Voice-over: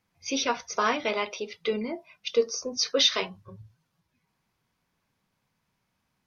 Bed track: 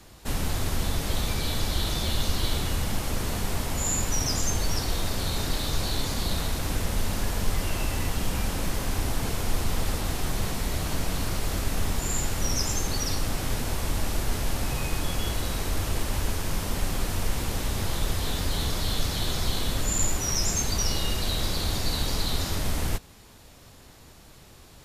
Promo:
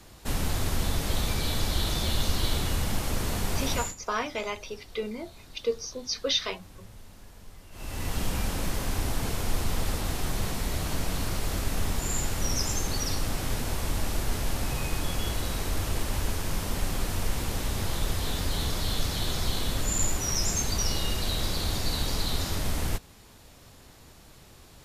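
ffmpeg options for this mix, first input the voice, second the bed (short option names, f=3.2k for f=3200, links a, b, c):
-filter_complex "[0:a]adelay=3300,volume=-4.5dB[a];[1:a]volume=20dB,afade=t=out:st=3.74:d=0.21:silence=0.0841395,afade=t=in:st=7.71:d=0.47:silence=0.0944061[b];[a][b]amix=inputs=2:normalize=0"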